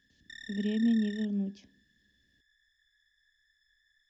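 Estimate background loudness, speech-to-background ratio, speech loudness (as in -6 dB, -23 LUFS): -46.5 LUFS, 15.5 dB, -31.0 LUFS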